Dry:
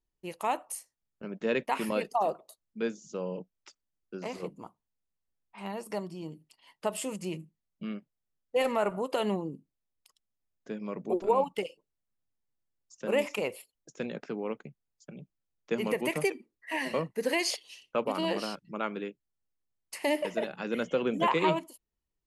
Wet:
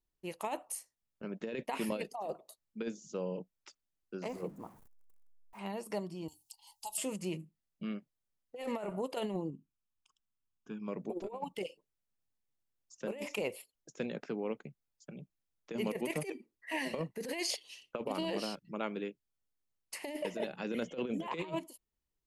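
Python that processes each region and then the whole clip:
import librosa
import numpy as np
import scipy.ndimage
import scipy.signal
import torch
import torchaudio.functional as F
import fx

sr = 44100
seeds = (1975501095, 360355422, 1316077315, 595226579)

y = fx.chain(x, sr, fx.zero_step(step_db=-50.5),
    fx.peak_eq(hz=3700.0, db=-12.5, octaves=2.0), at=(4.28, 5.59))
y = fx.chain(y, sr, fx.curve_eq(hz=(100.0, 160.0, 330.0, 560.0, 830.0, 1200.0, 1800.0, 2600.0, 4200.0, 6900.0), db=(0, -29, -17, -27, 8, -18, -24, -8, 5, 12)),
    fx.band_squash(depth_pct=40), at=(6.28, 6.98))
y = fx.chain(y, sr, fx.lowpass(hz=4000.0, slope=6),
    fx.fixed_phaser(hz=2900.0, stages=8), at=(9.5, 10.88))
y = fx.dynamic_eq(y, sr, hz=1300.0, q=1.5, threshold_db=-46.0, ratio=4.0, max_db=-6)
y = fx.over_compress(y, sr, threshold_db=-31.0, ratio=-0.5)
y = y * 10.0 ** (-4.0 / 20.0)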